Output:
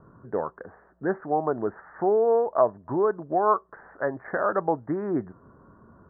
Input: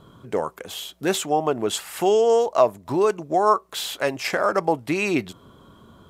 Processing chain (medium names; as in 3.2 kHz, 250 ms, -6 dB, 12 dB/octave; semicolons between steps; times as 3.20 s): steep low-pass 1.8 kHz 96 dB/octave; trim -3.5 dB